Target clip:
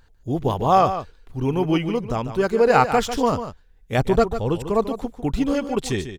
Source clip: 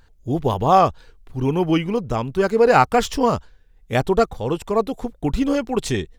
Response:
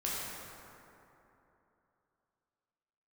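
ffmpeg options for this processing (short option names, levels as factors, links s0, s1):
-filter_complex "[0:a]asettb=1/sr,asplit=3[s0][s1][s2];[s0]atrim=end=3.984[s3];[s1]atrim=start=3.98:end=4.89,asetpts=PTS-STARTPTS,afade=t=in:d=0.004:c=qsin,afade=t=out:st=0.906:d=0.004:c=qsin,lowshelf=f=200:g=6.5[s4];[s2]atrim=start=4.886[s5];[s3][s4]acrossfade=d=0.004:c1=hsin:c2=qsin[s6];[s6][s5]acrossfade=d=0.004:c1=qsin:c2=hsin,aecho=1:1:146:0.299,volume=0.794"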